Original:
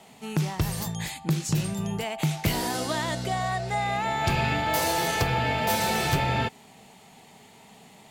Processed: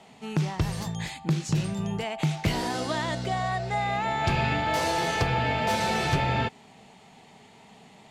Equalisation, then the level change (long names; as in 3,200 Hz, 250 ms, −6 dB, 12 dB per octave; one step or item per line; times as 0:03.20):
high-frequency loss of the air 62 metres
0.0 dB